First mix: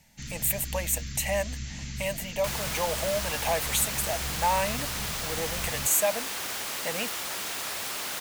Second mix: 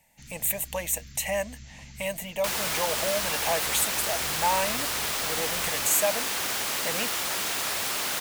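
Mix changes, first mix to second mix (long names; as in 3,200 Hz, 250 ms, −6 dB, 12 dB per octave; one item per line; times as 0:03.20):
first sound −9.5 dB
second sound +4.5 dB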